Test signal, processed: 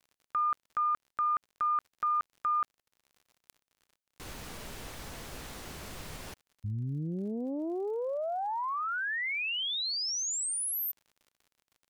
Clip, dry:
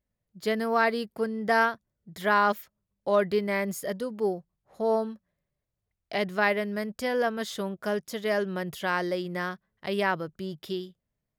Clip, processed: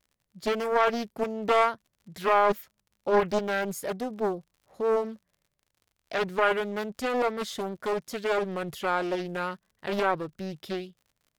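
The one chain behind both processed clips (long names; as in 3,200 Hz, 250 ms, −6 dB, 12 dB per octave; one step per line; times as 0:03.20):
surface crackle 63 per second −50 dBFS
highs frequency-modulated by the lows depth 0.74 ms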